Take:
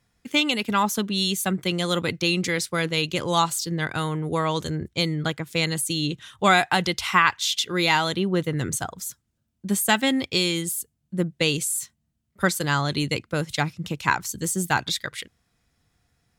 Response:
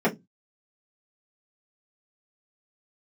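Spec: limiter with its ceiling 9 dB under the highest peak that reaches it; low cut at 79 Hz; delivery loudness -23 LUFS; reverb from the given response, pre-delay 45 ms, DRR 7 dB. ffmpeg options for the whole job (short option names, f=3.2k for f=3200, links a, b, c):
-filter_complex "[0:a]highpass=79,alimiter=limit=-12.5dB:level=0:latency=1,asplit=2[a][b];[1:a]atrim=start_sample=2205,adelay=45[c];[b][c]afir=irnorm=-1:irlink=0,volume=-22.5dB[d];[a][d]amix=inputs=2:normalize=0,volume=1dB"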